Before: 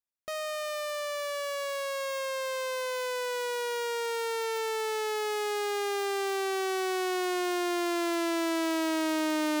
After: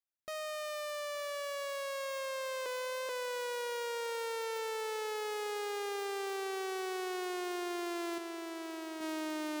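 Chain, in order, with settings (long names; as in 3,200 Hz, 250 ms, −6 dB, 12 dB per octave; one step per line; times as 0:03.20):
0:08.18–0:09.01: high-pass filter 180 Hz 12 dB per octave
brickwall limiter −27.5 dBFS, peak gain reduction 8.5 dB
feedback echo with a low-pass in the loop 868 ms, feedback 59%, low-pass 2,100 Hz, level −16.5 dB
0:02.66–0:03.09: reverse
level −5.5 dB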